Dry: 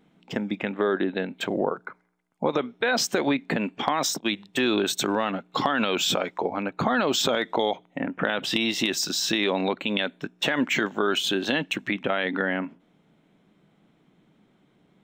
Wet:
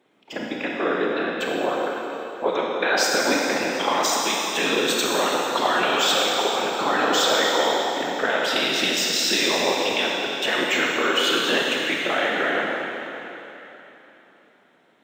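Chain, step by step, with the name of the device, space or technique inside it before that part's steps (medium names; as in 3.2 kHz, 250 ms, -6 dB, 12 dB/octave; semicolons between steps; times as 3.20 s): whispering ghost (whisper effect; high-pass 360 Hz 12 dB/octave; reverberation RT60 3.4 s, pre-delay 25 ms, DRR -3 dB); trim +1 dB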